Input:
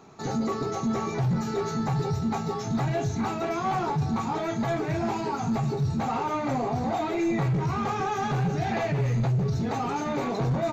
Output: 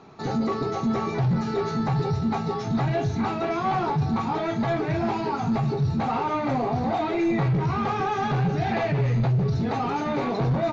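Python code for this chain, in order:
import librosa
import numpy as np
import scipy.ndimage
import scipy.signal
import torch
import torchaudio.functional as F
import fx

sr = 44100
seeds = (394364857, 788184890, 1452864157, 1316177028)

y = scipy.signal.sosfilt(scipy.signal.butter(4, 5100.0, 'lowpass', fs=sr, output='sos'), x)
y = y * 10.0 ** (2.5 / 20.0)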